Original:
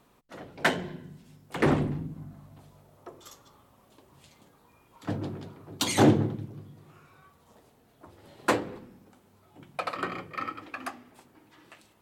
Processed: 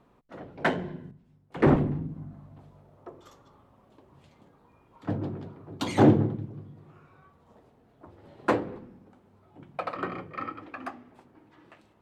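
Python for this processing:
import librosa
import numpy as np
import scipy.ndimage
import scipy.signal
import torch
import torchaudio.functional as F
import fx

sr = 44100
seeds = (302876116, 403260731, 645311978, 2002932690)

y = fx.lowpass(x, sr, hz=1200.0, slope=6)
y = fx.band_widen(y, sr, depth_pct=40, at=(1.11, 1.76))
y = y * 10.0 ** (2.0 / 20.0)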